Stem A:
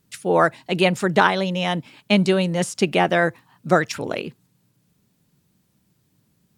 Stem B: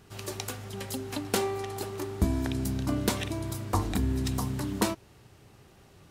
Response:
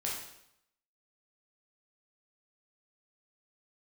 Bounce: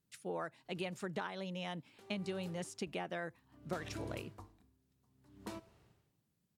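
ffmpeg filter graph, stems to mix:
-filter_complex "[0:a]acompressor=threshold=-19dB:ratio=6,volume=-17.5dB[a];[1:a]highshelf=f=5.8k:g=-7.5,aeval=exprs='val(0)*pow(10,-40*(0.5-0.5*cos(2*PI*0.59*n/s))/20)':c=same,adelay=650,volume=-11.5dB,afade=t=in:st=2.22:d=0.74:silence=0.316228,asplit=2[b][c];[c]volume=-19dB[d];[2:a]atrim=start_sample=2205[e];[d][e]afir=irnorm=-1:irlink=0[f];[a][b][f]amix=inputs=3:normalize=0"

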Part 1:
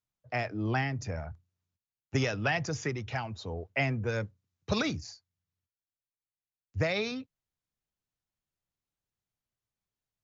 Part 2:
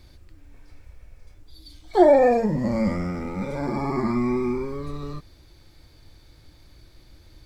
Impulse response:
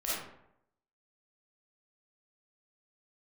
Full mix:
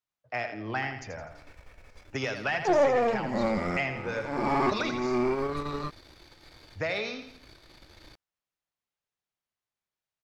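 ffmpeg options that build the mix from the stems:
-filter_complex "[0:a]volume=-7dB,asplit=3[a][b][c];[b]volume=-8.5dB[d];[1:a]aeval=exprs='if(lt(val(0),0),0.447*val(0),val(0))':c=same,adelay=700,volume=0.5dB[e];[c]apad=whole_len=359563[f];[e][f]sidechaincompress=threshold=-47dB:ratio=8:attack=39:release=361[g];[d]aecho=0:1:83|166|249|332|415|498:1|0.43|0.185|0.0795|0.0342|0.0147[h];[a][g][h]amix=inputs=3:normalize=0,asplit=2[i][j];[j]highpass=f=720:p=1,volume=15dB,asoftclip=type=tanh:threshold=-13dB[k];[i][k]amix=inputs=2:normalize=0,lowpass=f=3.1k:p=1,volume=-6dB"

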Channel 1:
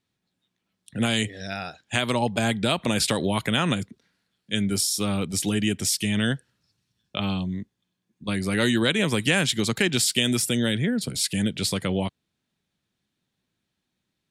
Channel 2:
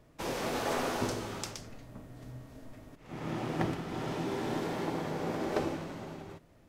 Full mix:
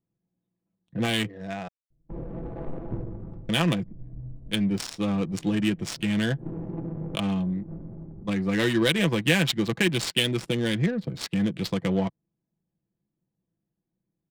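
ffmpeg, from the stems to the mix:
-filter_complex "[0:a]bandreject=f=1.4k:w=6.5,volume=-1dB,asplit=3[a][b][c];[a]atrim=end=1.68,asetpts=PTS-STARTPTS,afade=t=out:st=1.676:d=0.004:c=hsin[d];[b]atrim=start=1.68:end=3.49,asetpts=PTS-STARTPTS,volume=0[e];[c]atrim=start=3.49,asetpts=PTS-STARTPTS,afade=t=in:d=0.004:c=hsin[f];[d][e][f]concat=n=3:v=0:a=1,asplit=2[g][h];[1:a]tiltshelf=f=700:g=7.5,agate=range=-33dB:threshold=-45dB:ratio=3:detection=peak,aemphasis=mode=reproduction:type=bsi,adelay=1900,volume=-9.5dB[i];[h]apad=whole_len=378590[j];[i][j]sidechaincompress=threshold=-44dB:ratio=10:attack=16:release=103[k];[g][k]amix=inputs=2:normalize=0,aecho=1:1:6:0.54,adynamicsmooth=sensitivity=2.5:basefreq=700"

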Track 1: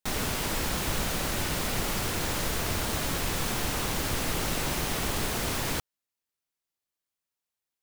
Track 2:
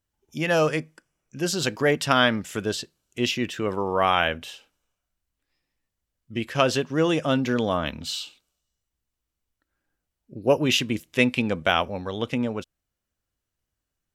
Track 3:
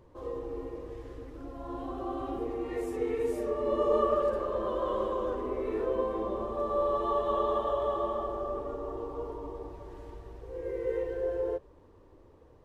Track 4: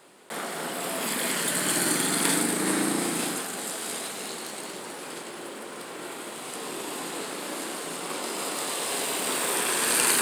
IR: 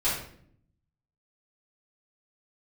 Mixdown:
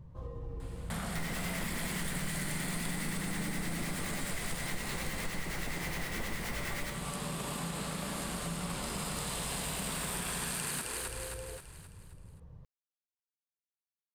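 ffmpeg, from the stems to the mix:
-filter_complex "[0:a]equalizer=f=2k:t=o:w=0.32:g=14,acrossover=split=1100[a][b];[a]aeval=exprs='val(0)*(1-0.7/2+0.7/2*cos(2*PI*9.6*n/s))':c=same[c];[b]aeval=exprs='val(0)*(1-0.7/2-0.7/2*cos(2*PI*9.6*n/s))':c=same[d];[c][d]amix=inputs=2:normalize=0,adelay=1100,volume=-5dB,asplit=2[e][f];[f]volume=-11.5dB[g];[2:a]acompressor=threshold=-36dB:ratio=6,volume=-4.5dB[h];[3:a]adelay=600,volume=-1.5dB,asplit=2[i][j];[j]volume=-11.5dB[k];[h][i]amix=inputs=2:normalize=0,lowshelf=f=230:t=q:w=3:g=12,acompressor=threshold=-27dB:ratio=6,volume=0dB[l];[4:a]atrim=start_sample=2205[m];[g][m]afir=irnorm=-1:irlink=0[n];[k]aecho=0:1:264|528|792|1056|1320|1584:1|0.45|0.202|0.0911|0.041|0.0185[o];[e][l][n][o]amix=inputs=4:normalize=0,acompressor=threshold=-35dB:ratio=3"

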